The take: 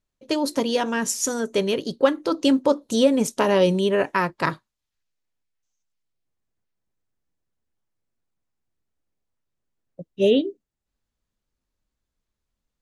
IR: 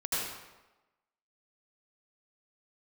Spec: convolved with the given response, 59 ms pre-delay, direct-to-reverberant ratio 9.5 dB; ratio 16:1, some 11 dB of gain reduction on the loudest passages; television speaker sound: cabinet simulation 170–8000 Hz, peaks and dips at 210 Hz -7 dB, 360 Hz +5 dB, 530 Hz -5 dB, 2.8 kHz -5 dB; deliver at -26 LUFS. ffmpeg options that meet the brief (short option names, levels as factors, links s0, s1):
-filter_complex "[0:a]acompressor=threshold=0.0794:ratio=16,asplit=2[s0][s1];[1:a]atrim=start_sample=2205,adelay=59[s2];[s1][s2]afir=irnorm=-1:irlink=0,volume=0.15[s3];[s0][s3]amix=inputs=2:normalize=0,highpass=f=170:w=0.5412,highpass=f=170:w=1.3066,equalizer=f=210:t=q:w=4:g=-7,equalizer=f=360:t=q:w=4:g=5,equalizer=f=530:t=q:w=4:g=-5,equalizer=f=2800:t=q:w=4:g=-5,lowpass=f=8000:w=0.5412,lowpass=f=8000:w=1.3066,volume=1.33"